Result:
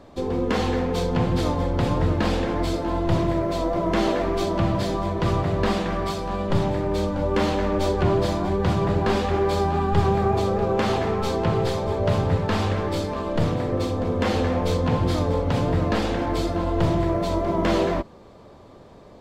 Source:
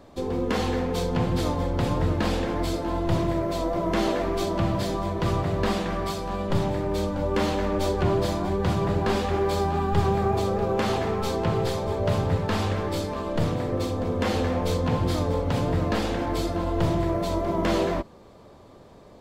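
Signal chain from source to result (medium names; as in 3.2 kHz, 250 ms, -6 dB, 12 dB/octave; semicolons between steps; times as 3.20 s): treble shelf 9.3 kHz -9 dB; trim +2.5 dB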